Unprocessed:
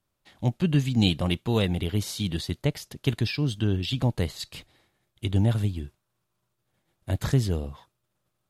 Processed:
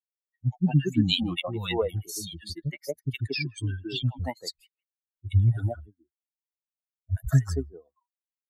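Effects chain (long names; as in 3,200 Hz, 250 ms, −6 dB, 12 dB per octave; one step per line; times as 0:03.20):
spectral dynamics exaggerated over time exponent 3
three-band delay without the direct sound lows, highs, mids 70/230 ms, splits 260/1,200 Hz
level +6.5 dB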